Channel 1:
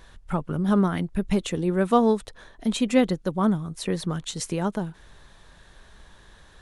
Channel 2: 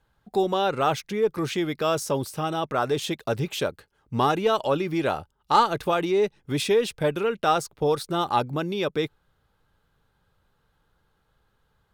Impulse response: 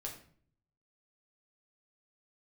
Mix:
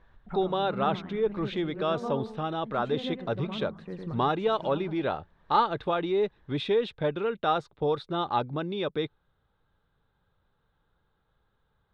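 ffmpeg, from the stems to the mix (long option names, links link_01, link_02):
-filter_complex "[0:a]volume=-10.5dB,asplit=3[link_01][link_02][link_03];[link_02]volume=-17dB[link_04];[link_03]volume=-6dB[link_05];[1:a]equalizer=frequency=3700:width=3.7:gain=13,volume=-4dB,asplit=2[link_06][link_07];[link_07]apad=whole_len=291834[link_08];[link_01][link_08]sidechaincompress=threshold=-38dB:ratio=8:attack=5.2:release=320[link_09];[2:a]atrim=start_sample=2205[link_10];[link_04][link_10]afir=irnorm=-1:irlink=0[link_11];[link_05]aecho=0:1:109|218|327|436|545:1|0.37|0.137|0.0507|0.0187[link_12];[link_09][link_06][link_11][link_12]amix=inputs=4:normalize=0,lowpass=2000"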